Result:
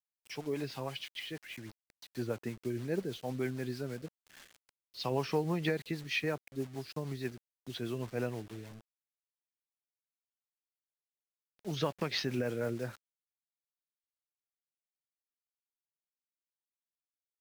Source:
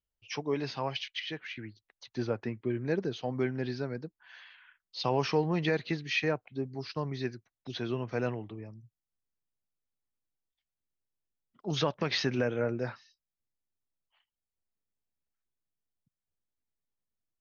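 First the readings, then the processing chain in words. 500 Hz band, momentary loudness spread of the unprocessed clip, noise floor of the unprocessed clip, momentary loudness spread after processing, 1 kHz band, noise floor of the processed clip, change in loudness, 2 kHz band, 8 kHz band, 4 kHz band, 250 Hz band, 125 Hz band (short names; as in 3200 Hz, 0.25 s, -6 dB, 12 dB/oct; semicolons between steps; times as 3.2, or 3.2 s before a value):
-4.0 dB, 15 LU, under -85 dBFS, 14 LU, -5.5 dB, under -85 dBFS, -4.0 dB, -4.5 dB, n/a, -4.5 dB, -3.5 dB, -3.5 dB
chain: bit-crush 8-bit; rotary speaker horn 6.3 Hz; gain -2 dB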